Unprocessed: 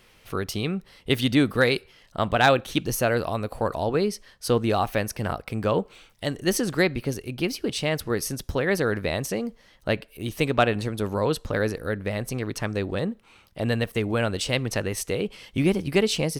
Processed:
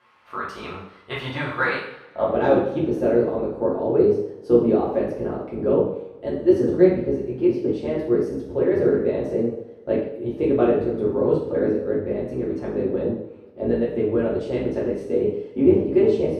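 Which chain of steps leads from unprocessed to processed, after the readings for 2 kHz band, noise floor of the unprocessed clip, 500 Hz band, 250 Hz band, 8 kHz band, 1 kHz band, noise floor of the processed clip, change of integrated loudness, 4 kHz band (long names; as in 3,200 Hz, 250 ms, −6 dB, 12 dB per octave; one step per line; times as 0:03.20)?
−4.5 dB, −57 dBFS, +6.0 dB, +4.5 dB, below −20 dB, −2.5 dB, −45 dBFS, +3.5 dB, below −10 dB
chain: sub-octave generator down 1 octave, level +3 dB
band-pass filter sweep 1,100 Hz → 400 Hz, 0:01.85–0:02.39
coupled-rooms reverb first 0.65 s, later 2.9 s, from −25 dB, DRR −6 dB
level +2.5 dB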